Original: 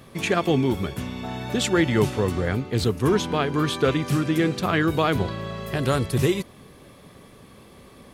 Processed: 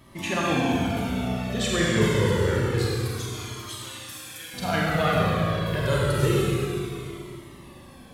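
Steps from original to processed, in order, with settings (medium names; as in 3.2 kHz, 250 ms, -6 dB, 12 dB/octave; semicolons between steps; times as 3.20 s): 2.82–4.54 s: differentiator; Schroeder reverb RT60 3 s, combs from 32 ms, DRR -5 dB; Shepard-style flanger falling 0.27 Hz; trim -1 dB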